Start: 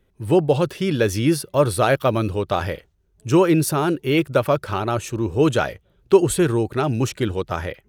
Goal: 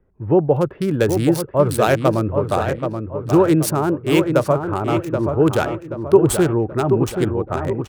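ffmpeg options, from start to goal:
-filter_complex "[0:a]acrossover=split=570|1700[a][b][c];[c]acrusher=bits=3:mix=0:aa=0.5[d];[a][b][d]amix=inputs=3:normalize=0,asplit=2[e][f];[f]adelay=779,lowpass=f=2.7k:p=1,volume=-6.5dB,asplit=2[g][h];[h]adelay=779,lowpass=f=2.7k:p=1,volume=0.44,asplit=2[i][j];[j]adelay=779,lowpass=f=2.7k:p=1,volume=0.44,asplit=2[k][l];[l]adelay=779,lowpass=f=2.7k:p=1,volume=0.44,asplit=2[m][n];[n]adelay=779,lowpass=f=2.7k:p=1,volume=0.44[o];[e][g][i][k][m][o]amix=inputs=6:normalize=0,volume=1.5dB"

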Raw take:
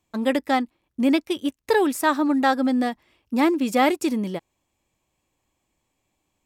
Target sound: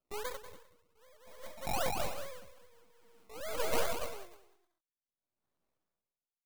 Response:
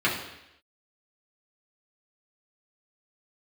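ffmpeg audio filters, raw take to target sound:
-filter_complex "[0:a]highpass=77,highshelf=f=10k:g=-9,acrossover=split=570[a][b];[b]acompressor=threshold=-35dB:ratio=6[c];[a][c]amix=inputs=2:normalize=0,asetrate=83250,aresample=44100,atempo=0.529732,acrusher=samples=22:mix=1:aa=0.000001:lfo=1:lforange=13.2:lforate=2.5,aeval=exprs='max(val(0),0)':c=same,crystalizer=i=0.5:c=0,asplit=2[d][e];[e]aecho=0:1:190|304|372.4|413.4|438.1:0.631|0.398|0.251|0.158|0.1[f];[d][f]amix=inputs=2:normalize=0,aeval=exprs='val(0)*pow(10,-33*(0.5-0.5*cos(2*PI*0.53*n/s))/20)':c=same,volume=-8dB"

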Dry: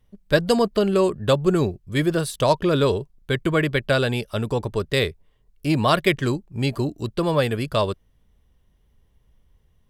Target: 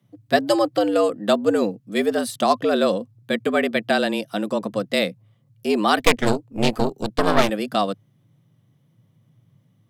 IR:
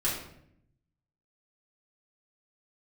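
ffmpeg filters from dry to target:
-filter_complex "[0:a]afreqshift=100,asettb=1/sr,asplit=3[a][b][c];[a]atrim=end=5.994[d];[b]atrim=start=5.99:end=7.5,asetpts=PTS-STARTPTS,afade=t=in:d=0.004:c=qsin,afade=t=out:st=1.506:d=0.004:c=qsin,aeval=exprs='0.596*(cos(1*acos(clip(val(0)/0.596,-1,1)))-cos(1*PI/2))+0.188*(cos(6*acos(clip(val(0)/0.596,-1,1)))-cos(6*PI/2))':c=same[e];[c]atrim=start=7.496[f];[d][e]acrossfade=d=0.004:c1=hsin:c2=qsin[g];[g][f]acrossfade=d=0.004:c1=qsin:c2=hsin"

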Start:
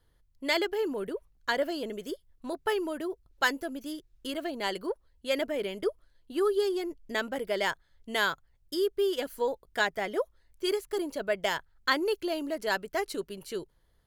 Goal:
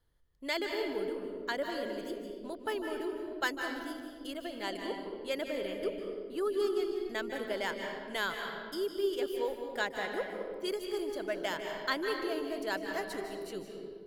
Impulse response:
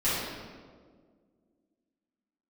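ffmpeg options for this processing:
-filter_complex "[0:a]asplit=2[a][b];[1:a]atrim=start_sample=2205,adelay=147[c];[b][c]afir=irnorm=-1:irlink=0,volume=-15dB[d];[a][d]amix=inputs=2:normalize=0,volume=-6.5dB"

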